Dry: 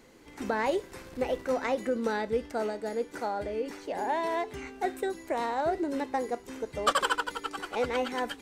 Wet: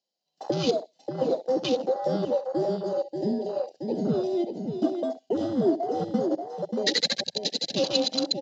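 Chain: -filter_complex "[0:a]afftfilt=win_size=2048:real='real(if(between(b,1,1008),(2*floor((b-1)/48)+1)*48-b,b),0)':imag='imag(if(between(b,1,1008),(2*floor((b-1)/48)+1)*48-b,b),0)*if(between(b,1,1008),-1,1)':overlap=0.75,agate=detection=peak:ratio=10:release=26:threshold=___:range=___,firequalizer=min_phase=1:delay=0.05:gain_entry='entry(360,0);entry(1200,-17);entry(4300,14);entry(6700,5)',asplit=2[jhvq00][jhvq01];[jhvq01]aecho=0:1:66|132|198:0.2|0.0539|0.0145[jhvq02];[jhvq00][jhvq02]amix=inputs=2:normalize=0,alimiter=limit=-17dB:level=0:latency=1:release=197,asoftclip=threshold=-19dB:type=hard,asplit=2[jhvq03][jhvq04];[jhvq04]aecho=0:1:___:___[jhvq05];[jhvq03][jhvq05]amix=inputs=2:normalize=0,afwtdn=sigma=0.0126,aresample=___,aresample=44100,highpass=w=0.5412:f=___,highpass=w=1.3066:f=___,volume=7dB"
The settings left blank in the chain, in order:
-39dB, -20dB, 584, 0.501, 16000, 170, 170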